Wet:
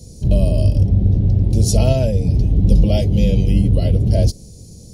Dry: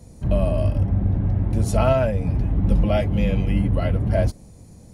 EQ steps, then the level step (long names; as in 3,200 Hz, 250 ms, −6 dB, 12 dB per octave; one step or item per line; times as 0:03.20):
drawn EQ curve 140 Hz 0 dB, 290 Hz −4 dB, 430 Hz +1 dB, 1,300 Hz −23 dB, 2,000 Hz −15 dB, 3,000 Hz −2 dB, 5,200 Hz +10 dB, 8,200 Hz +3 dB
+6.5 dB